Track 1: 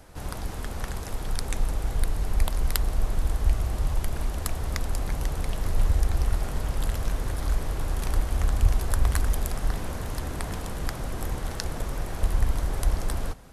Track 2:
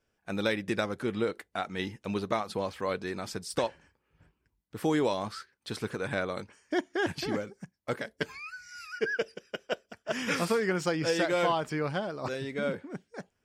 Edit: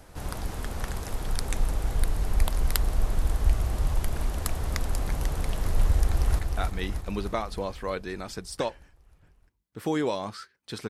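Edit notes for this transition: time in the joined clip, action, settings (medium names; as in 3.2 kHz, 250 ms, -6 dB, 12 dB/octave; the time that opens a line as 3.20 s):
track 1
5.98–6.39 s: echo throw 310 ms, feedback 65%, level -5 dB
6.39 s: go over to track 2 from 1.37 s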